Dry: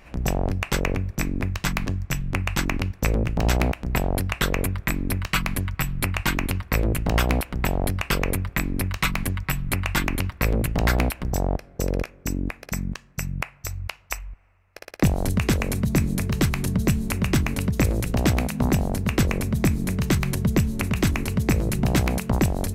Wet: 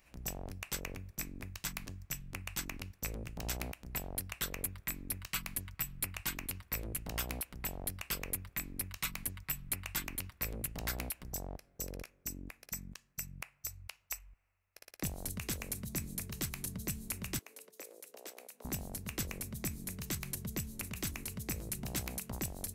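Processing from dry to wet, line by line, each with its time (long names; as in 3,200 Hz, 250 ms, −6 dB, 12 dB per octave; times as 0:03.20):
0:17.39–0:18.65: four-pole ladder high-pass 400 Hz, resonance 55%
whole clip: first-order pre-emphasis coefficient 0.8; level −6.5 dB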